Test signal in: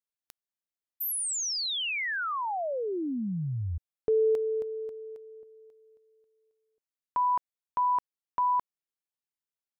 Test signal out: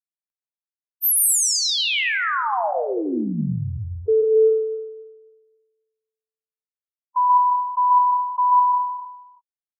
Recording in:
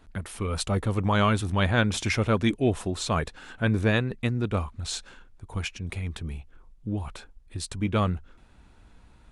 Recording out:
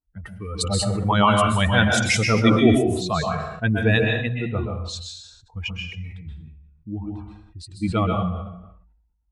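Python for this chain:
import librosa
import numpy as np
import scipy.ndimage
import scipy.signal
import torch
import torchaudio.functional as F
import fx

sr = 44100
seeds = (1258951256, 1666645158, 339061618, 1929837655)

y = fx.bin_expand(x, sr, power=2.0)
y = scipy.signal.sosfilt(scipy.signal.butter(2, 71.0, 'highpass', fs=sr, output='sos'), y)
y = fx.high_shelf(y, sr, hz=7900.0, db=9.0)
y = fx.notch(y, sr, hz=560.0, q=12.0)
y = fx.env_lowpass(y, sr, base_hz=1200.0, full_db=-23.5)
y = fx.low_shelf(y, sr, hz=140.0, db=-4.5)
y = fx.rev_plate(y, sr, seeds[0], rt60_s=0.59, hf_ratio=0.85, predelay_ms=115, drr_db=1.0)
y = fx.sustainer(y, sr, db_per_s=55.0)
y = y * 10.0 ** (8.0 / 20.0)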